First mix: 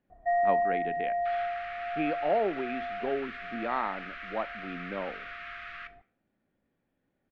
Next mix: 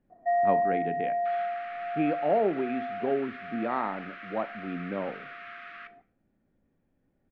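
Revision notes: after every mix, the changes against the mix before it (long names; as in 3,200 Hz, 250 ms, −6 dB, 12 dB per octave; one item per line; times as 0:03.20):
speech: send +6.0 dB
first sound: add high-pass filter 200 Hz 24 dB per octave
master: add spectral tilt −2.5 dB per octave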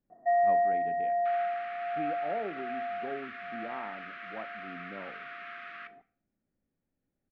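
speech −11.5 dB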